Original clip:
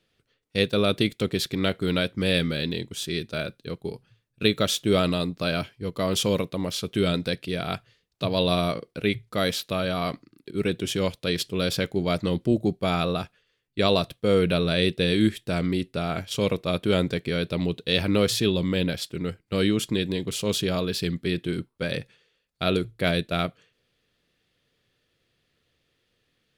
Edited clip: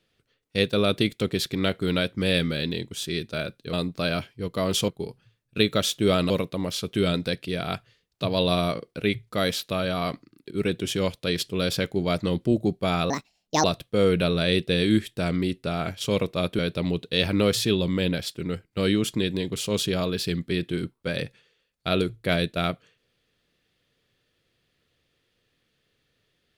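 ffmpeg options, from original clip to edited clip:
-filter_complex "[0:a]asplit=7[s0][s1][s2][s3][s4][s5][s6];[s0]atrim=end=3.732[s7];[s1]atrim=start=5.148:end=6.302[s8];[s2]atrim=start=3.728:end=5.152[s9];[s3]atrim=start=6.298:end=13.104[s10];[s4]atrim=start=13.1:end=13.94,asetpts=PTS-STARTPTS,asetrate=68796,aresample=44100,atrim=end_sample=23746,asetpts=PTS-STARTPTS[s11];[s5]atrim=start=13.936:end=16.892[s12];[s6]atrim=start=17.338[s13];[s7][s8]acrossfade=d=0.004:c1=hsin:c2=hsin[s14];[s14][s9]acrossfade=d=0.004:c1=hsin:c2=hsin[s15];[s15][s10]acrossfade=d=0.004:c1=hsin:c2=hsin[s16];[s16][s11]acrossfade=d=0.004:c1=hsin:c2=hsin[s17];[s17][s12]acrossfade=d=0.004:c1=hsin:c2=hsin[s18];[s18][s13]acrossfade=d=0.004:c1=hsin:c2=hsin"

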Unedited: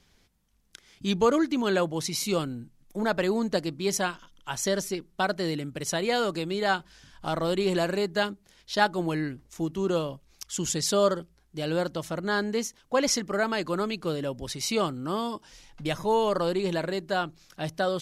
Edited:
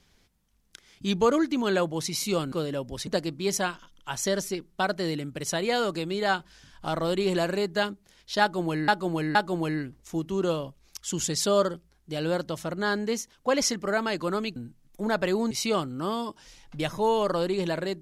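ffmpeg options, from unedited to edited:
-filter_complex "[0:a]asplit=7[s0][s1][s2][s3][s4][s5][s6];[s0]atrim=end=2.522[s7];[s1]atrim=start=14.018:end=14.572[s8];[s2]atrim=start=3.468:end=9.282[s9];[s3]atrim=start=8.808:end=9.282[s10];[s4]atrim=start=8.808:end=14.022[s11];[s5]atrim=start=2.518:end=3.472[s12];[s6]atrim=start=14.568[s13];[s7][s8]acrossfade=d=0.004:c1=hsin:c2=hsin[s14];[s14][s9]acrossfade=d=0.004:c1=hsin:c2=hsin[s15];[s15][s10]acrossfade=d=0.004:c1=hsin:c2=hsin[s16];[s16][s11]acrossfade=d=0.004:c1=hsin:c2=hsin[s17];[s17][s12]acrossfade=d=0.004:c1=hsin:c2=hsin[s18];[s18][s13]acrossfade=d=0.004:c1=hsin:c2=hsin"

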